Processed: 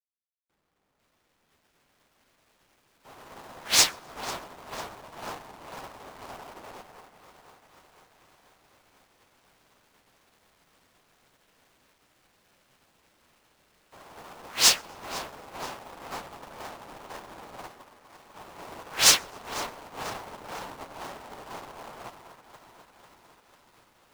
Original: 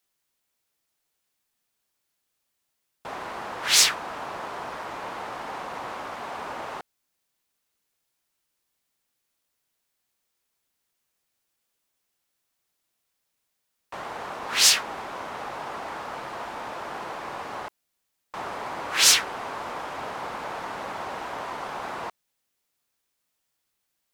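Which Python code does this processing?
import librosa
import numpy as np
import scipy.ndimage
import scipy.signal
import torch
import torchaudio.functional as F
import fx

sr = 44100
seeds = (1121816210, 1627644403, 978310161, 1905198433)

y = x + 0.5 * 10.0 ** (-19.5 / 20.0) * np.sign(x)
y = fx.echo_alternate(y, sr, ms=248, hz=1100.0, feedback_pct=87, wet_db=-7)
y = fx.backlash(y, sr, play_db=-16.0)
y = fx.echo_feedback(y, sr, ms=128, feedback_pct=57, wet_db=-18.5)
y = fx.upward_expand(y, sr, threshold_db=-37.0, expansion=2.5)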